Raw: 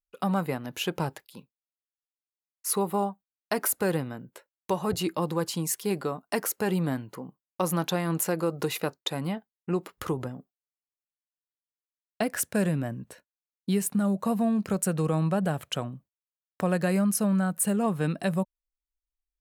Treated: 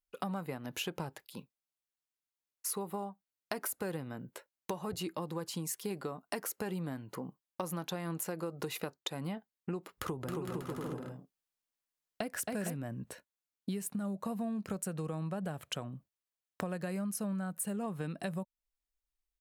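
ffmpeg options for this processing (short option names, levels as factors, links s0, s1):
-filter_complex "[0:a]asplit=3[s0][s1][s2];[s0]afade=t=out:st=10.26:d=0.02[s3];[s1]aecho=1:1:270|459|591.3|683.9|748.7|794.1|825.9|848.1:0.794|0.631|0.501|0.398|0.316|0.251|0.2|0.158,afade=t=in:st=10.26:d=0.02,afade=t=out:st=12.75:d=0.02[s4];[s2]afade=t=in:st=12.75:d=0.02[s5];[s3][s4][s5]amix=inputs=3:normalize=0,acompressor=threshold=0.0178:ratio=6"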